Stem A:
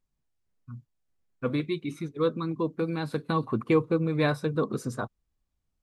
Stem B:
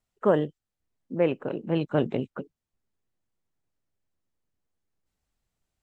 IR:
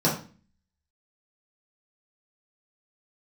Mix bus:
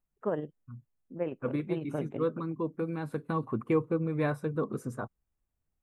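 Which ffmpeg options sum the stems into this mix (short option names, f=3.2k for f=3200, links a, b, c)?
-filter_complex "[0:a]volume=-4dB[a];[1:a]tremolo=f=18:d=0.43,volume=-8dB[b];[a][b]amix=inputs=2:normalize=0,equalizer=f=4.3k:w=1.2:g=-14"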